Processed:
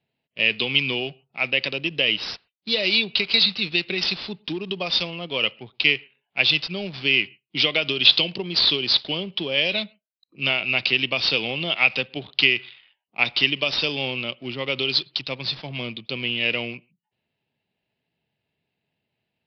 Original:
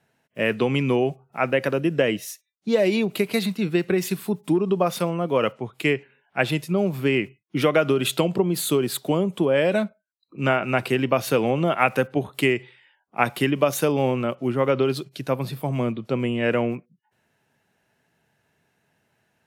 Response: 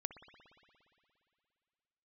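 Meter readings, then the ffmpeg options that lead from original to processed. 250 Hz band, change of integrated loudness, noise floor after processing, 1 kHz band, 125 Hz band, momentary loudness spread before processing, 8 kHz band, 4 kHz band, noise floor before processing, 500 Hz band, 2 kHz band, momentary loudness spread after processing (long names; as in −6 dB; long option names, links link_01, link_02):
−9.0 dB, +1.5 dB, −82 dBFS, −9.0 dB, −9.0 dB, 7 LU, below −10 dB, +14.0 dB, −73 dBFS, −9.0 dB, +6.0 dB, 11 LU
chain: -filter_complex "[0:a]aexciter=amount=13.9:drive=7.3:freq=2400,adynamicsmooth=sensitivity=5:basefreq=1000,asplit=2[link_01][link_02];[1:a]atrim=start_sample=2205,afade=type=out:start_time=0.2:duration=0.01,atrim=end_sample=9261[link_03];[link_02][link_03]afir=irnorm=-1:irlink=0,volume=-12dB[link_04];[link_01][link_04]amix=inputs=2:normalize=0,aresample=11025,aresample=44100,volume=-10.5dB"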